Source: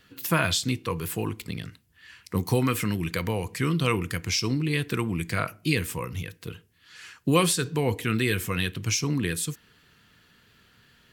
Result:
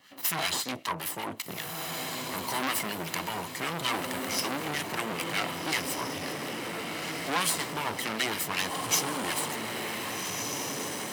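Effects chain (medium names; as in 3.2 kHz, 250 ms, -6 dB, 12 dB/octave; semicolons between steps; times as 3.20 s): comb filter that takes the minimum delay 1 ms; high-pass 290 Hz 12 dB/octave; in parallel at +2.5 dB: peak limiter -20 dBFS, peak gain reduction 10 dB; on the sum: harmonic tremolo 5.3 Hz, depth 70%, crossover 1.1 kHz; on a send: echo that smears into a reverb 1607 ms, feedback 50%, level -4.5 dB; on the sum: transformer saturation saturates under 3.6 kHz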